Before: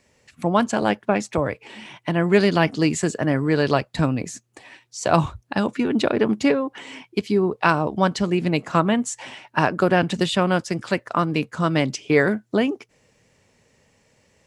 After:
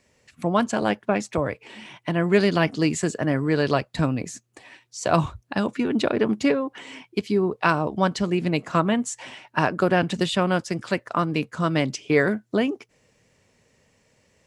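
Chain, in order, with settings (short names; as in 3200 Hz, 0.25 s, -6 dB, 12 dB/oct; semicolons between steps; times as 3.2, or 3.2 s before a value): notch 840 Hz, Q 21; gain -2 dB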